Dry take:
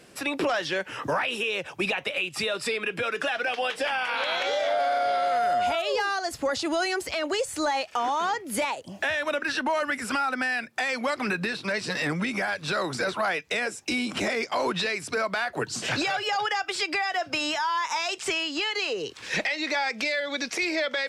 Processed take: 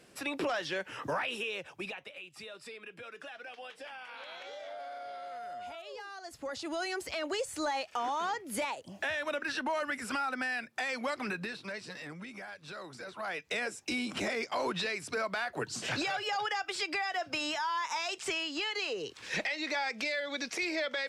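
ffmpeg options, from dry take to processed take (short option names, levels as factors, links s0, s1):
-af "volume=5.62,afade=t=out:st=1.31:d=0.8:silence=0.266073,afade=t=in:st=6.11:d=1.01:silence=0.266073,afade=t=out:st=11.08:d=0.96:silence=0.316228,afade=t=in:st=13.11:d=0.41:silence=0.298538"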